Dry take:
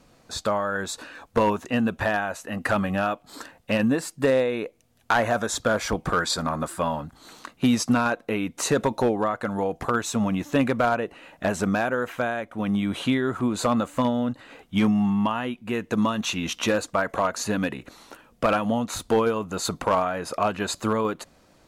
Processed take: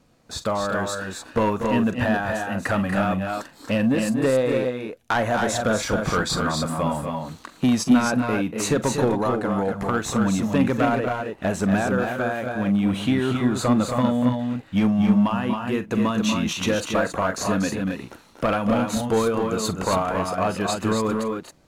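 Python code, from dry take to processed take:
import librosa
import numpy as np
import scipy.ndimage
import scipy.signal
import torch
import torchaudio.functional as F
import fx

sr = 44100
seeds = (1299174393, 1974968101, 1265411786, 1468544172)

y = fx.peak_eq(x, sr, hz=130.0, db=4.5, octaves=2.8)
y = fx.leveller(y, sr, passes=1)
y = fx.echo_multitap(y, sr, ms=(40, 46, 239, 271), db=(-16.5, -16.0, -8.5, -5.0))
y = F.gain(torch.from_numpy(y), -4.0).numpy()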